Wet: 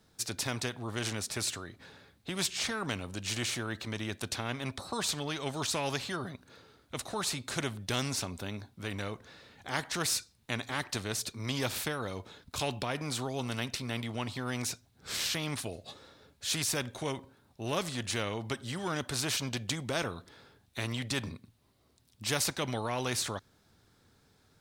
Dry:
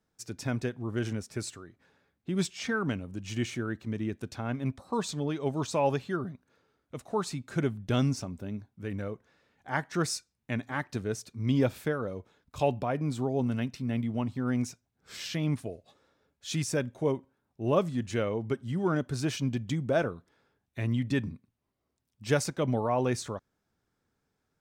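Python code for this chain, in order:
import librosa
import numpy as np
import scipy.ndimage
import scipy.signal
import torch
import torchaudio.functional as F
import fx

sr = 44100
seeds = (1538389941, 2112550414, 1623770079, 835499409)

y = fx.graphic_eq_15(x, sr, hz=(100, 4000, 10000), db=(5, 8, 4))
y = fx.spectral_comp(y, sr, ratio=2.0)
y = y * 10.0 ** (-1.5 / 20.0)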